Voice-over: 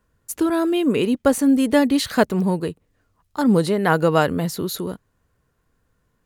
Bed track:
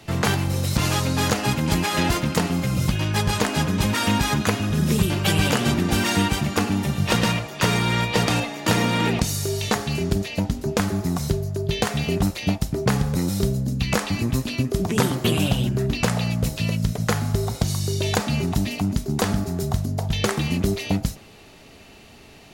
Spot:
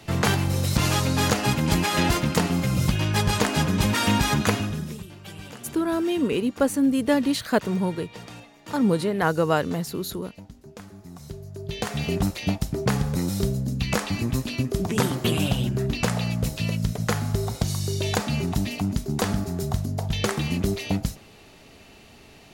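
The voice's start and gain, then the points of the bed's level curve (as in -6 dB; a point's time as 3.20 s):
5.35 s, -4.5 dB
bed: 4.58 s -0.5 dB
5.06 s -20.5 dB
10.99 s -20.5 dB
12.05 s -2.5 dB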